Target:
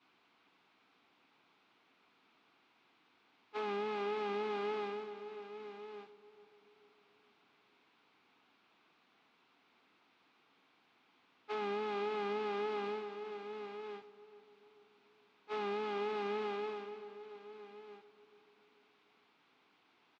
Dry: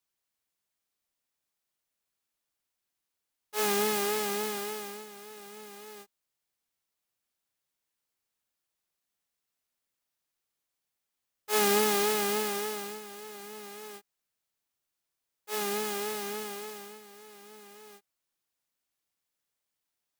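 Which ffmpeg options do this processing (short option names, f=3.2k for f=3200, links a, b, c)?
-filter_complex "[0:a]aeval=exprs='val(0)+0.5*0.0188*sgn(val(0))':c=same,agate=range=-33dB:threshold=-28dB:ratio=3:detection=peak,acompressor=threshold=-37dB:ratio=10,aeval=exprs='(tanh(100*val(0)+0.6)-tanh(0.6))/100':c=same,highpass=220,equalizer=f=270:t=q:w=4:g=4,equalizer=f=570:t=q:w=4:g=-10,equalizer=f=1.8k:t=q:w=4:g=-8,equalizer=f=3k:t=q:w=4:g=-4,lowpass=f=3.1k:w=0.5412,lowpass=f=3.1k:w=1.3066,asplit=2[a][b];[b]adelay=438,lowpass=f=1.2k:p=1,volume=-15.5dB,asplit=2[c][d];[d]adelay=438,lowpass=f=1.2k:p=1,volume=0.54,asplit=2[e][f];[f]adelay=438,lowpass=f=1.2k:p=1,volume=0.54,asplit=2[g][h];[h]adelay=438,lowpass=f=1.2k:p=1,volume=0.54,asplit=2[i][j];[j]adelay=438,lowpass=f=1.2k:p=1,volume=0.54[k];[c][e][g][i][k]amix=inputs=5:normalize=0[l];[a][l]amix=inputs=2:normalize=0,volume=9.5dB"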